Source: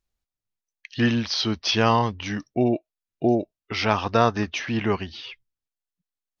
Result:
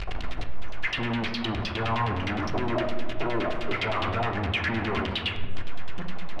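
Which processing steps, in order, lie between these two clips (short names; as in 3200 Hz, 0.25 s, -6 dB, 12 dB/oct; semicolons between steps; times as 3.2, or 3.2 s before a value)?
infinite clipping; LFO low-pass saw down 9.7 Hz 630–3700 Hz; on a send at -3 dB: air absorption 230 m + reverb RT60 1.5 s, pre-delay 3 ms; on the sum: mismatched tape noise reduction decoder only; gain -5 dB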